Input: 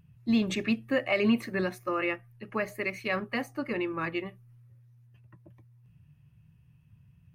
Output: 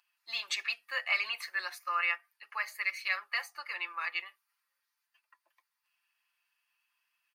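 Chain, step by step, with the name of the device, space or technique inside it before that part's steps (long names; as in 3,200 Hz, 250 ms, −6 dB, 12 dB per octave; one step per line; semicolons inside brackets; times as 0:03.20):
headphones lying on a table (high-pass filter 1,000 Hz 24 dB per octave; parametric band 4,600 Hz +8.5 dB 0.29 octaves)
comb filter 5.8 ms, depth 50%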